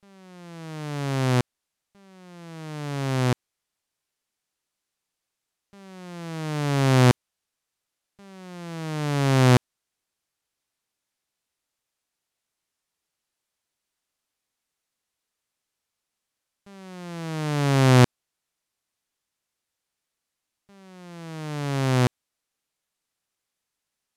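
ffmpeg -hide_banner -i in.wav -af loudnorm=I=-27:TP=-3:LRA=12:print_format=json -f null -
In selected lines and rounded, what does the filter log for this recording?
"input_i" : "-23.4",
"input_tp" : "-5.8",
"input_lra" : "7.2",
"input_thresh" : "-35.6",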